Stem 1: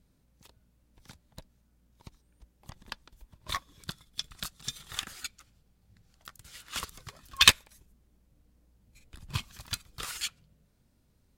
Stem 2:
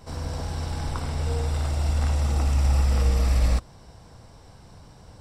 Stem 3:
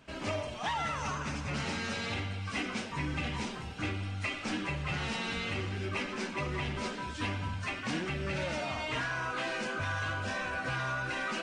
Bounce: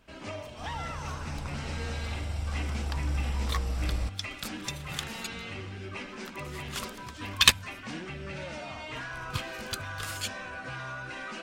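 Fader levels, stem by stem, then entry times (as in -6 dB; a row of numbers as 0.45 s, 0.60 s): -1.0 dB, -10.0 dB, -4.5 dB; 0.00 s, 0.50 s, 0.00 s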